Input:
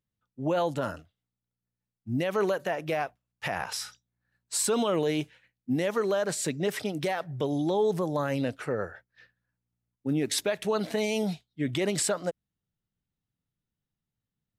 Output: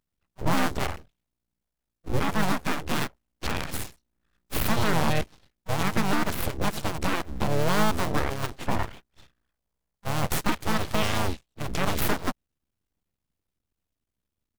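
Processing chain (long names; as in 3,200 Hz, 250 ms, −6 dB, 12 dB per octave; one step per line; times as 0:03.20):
sub-harmonics by changed cycles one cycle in 2, muted
full-wave rectification
pitch-shifted copies added −5 semitones −4 dB, +7 semitones −17 dB
level +4.5 dB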